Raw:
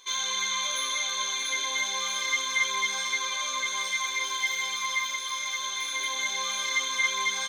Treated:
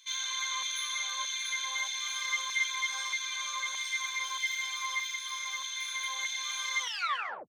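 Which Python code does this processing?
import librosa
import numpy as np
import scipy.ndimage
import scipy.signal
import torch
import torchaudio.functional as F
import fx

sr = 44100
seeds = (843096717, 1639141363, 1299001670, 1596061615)

y = fx.tape_stop_end(x, sr, length_s=0.67)
y = fx.filter_lfo_highpass(y, sr, shape='saw_down', hz=1.6, low_hz=750.0, high_hz=2200.0, q=1.1)
y = y * 10.0 ** (-5.5 / 20.0)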